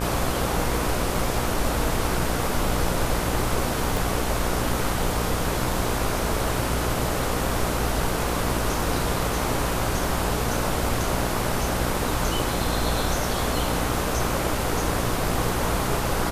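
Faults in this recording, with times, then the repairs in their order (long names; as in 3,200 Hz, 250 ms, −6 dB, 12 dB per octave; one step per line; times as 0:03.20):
mains buzz 60 Hz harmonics 26 −29 dBFS
0:03.97: click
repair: click removal
hum removal 60 Hz, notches 26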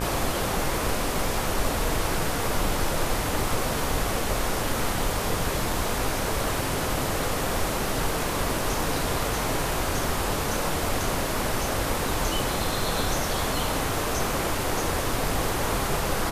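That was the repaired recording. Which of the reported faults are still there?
0:03.97: click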